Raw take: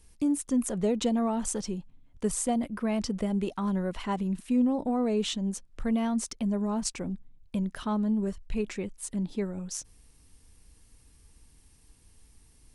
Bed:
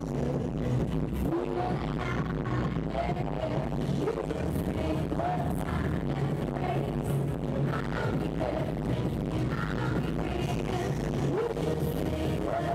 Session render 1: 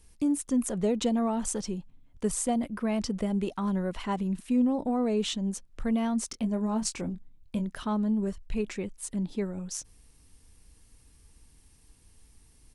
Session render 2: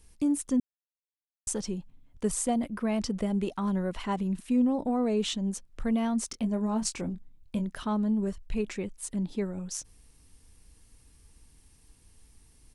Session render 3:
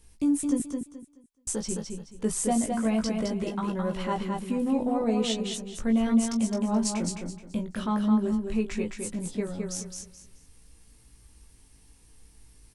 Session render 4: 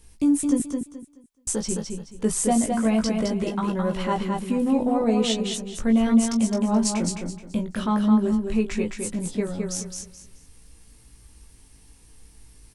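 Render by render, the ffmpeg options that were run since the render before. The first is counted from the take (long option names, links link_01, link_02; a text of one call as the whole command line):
ffmpeg -i in.wav -filter_complex "[0:a]asplit=3[link_01][link_02][link_03];[link_01]afade=type=out:start_time=6.32:duration=0.02[link_04];[link_02]asplit=2[link_05][link_06];[link_06]adelay=23,volume=-8.5dB[link_07];[link_05][link_07]amix=inputs=2:normalize=0,afade=type=in:start_time=6.32:duration=0.02,afade=type=out:start_time=7.66:duration=0.02[link_08];[link_03]afade=type=in:start_time=7.66:duration=0.02[link_09];[link_04][link_08][link_09]amix=inputs=3:normalize=0" out.wav
ffmpeg -i in.wav -filter_complex "[0:a]asplit=3[link_01][link_02][link_03];[link_01]atrim=end=0.6,asetpts=PTS-STARTPTS,afade=type=out:start_time=0.596:duration=0.004:curve=hsin[link_04];[link_02]atrim=start=0.6:end=1.47,asetpts=PTS-STARTPTS,volume=0[link_05];[link_03]atrim=start=1.47,asetpts=PTS-STARTPTS,afade=type=in:duration=0.004:curve=hsin[link_06];[link_04][link_05][link_06]concat=n=3:v=0:a=1" out.wav
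ffmpeg -i in.wav -filter_complex "[0:a]asplit=2[link_01][link_02];[link_02]adelay=18,volume=-4.5dB[link_03];[link_01][link_03]amix=inputs=2:normalize=0,aecho=1:1:214|428|642|856:0.596|0.155|0.0403|0.0105" out.wav
ffmpeg -i in.wav -af "volume=4.5dB" out.wav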